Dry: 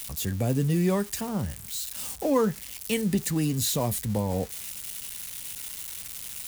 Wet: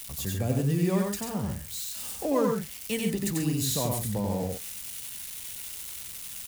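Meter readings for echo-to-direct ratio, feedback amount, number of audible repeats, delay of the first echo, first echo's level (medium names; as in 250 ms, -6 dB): -2.0 dB, no regular repeats, 2, 92 ms, -3.0 dB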